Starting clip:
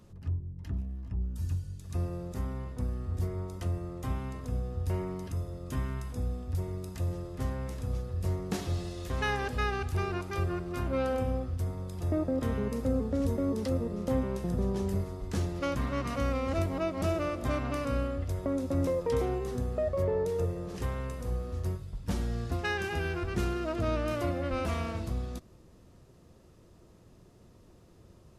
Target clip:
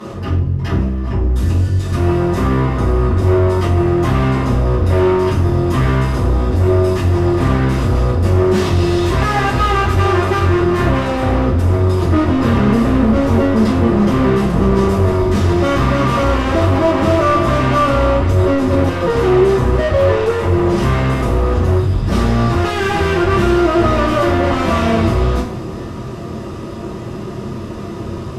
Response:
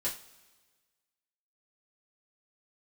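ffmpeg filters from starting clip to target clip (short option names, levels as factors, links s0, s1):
-filter_complex "[0:a]asubboost=boost=2.5:cutoff=250,acontrast=70,asplit=2[s0][s1];[s1]highpass=f=720:p=1,volume=89.1,asoftclip=type=tanh:threshold=0.501[s2];[s0][s2]amix=inputs=2:normalize=0,lowpass=f=1300:p=1,volume=0.501[s3];[1:a]atrim=start_sample=2205,asetrate=29547,aresample=44100[s4];[s3][s4]afir=irnorm=-1:irlink=0,volume=0.422"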